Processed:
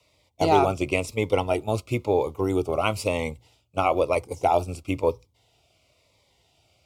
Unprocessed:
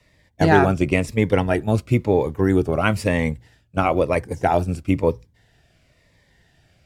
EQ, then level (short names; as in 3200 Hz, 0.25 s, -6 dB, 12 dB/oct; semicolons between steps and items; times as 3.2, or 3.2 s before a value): HPF 89 Hz; Butterworth band-stop 1700 Hz, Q 1.8; bell 180 Hz -13.5 dB 1.5 oct; 0.0 dB